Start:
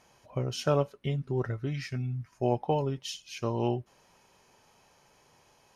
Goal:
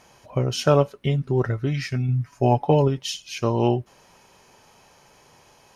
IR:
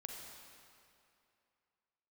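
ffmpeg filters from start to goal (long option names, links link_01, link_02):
-filter_complex "[0:a]asettb=1/sr,asplit=3[link_01][link_02][link_03];[link_01]atrim=end=2.084[link_04];[link_02]atrim=start=2.08:end=2.88,asetpts=PTS-STARTPTS,afade=type=in:duration=0.004:curve=qsin,afade=type=out:start_time=0.796:duration=0.004:curve=qsin,aecho=1:1:7.1:0.57,atrim=end_sample=35280[link_05];[link_03]atrim=start=2.876[link_06];[link_04][link_05]acrossfade=duration=0.004:curve1=hsin:curve2=qsin[link_07];[link_07][link_06]acrossfade=duration=0.004:curve1=qsin:curve2=hsin,volume=8.5dB"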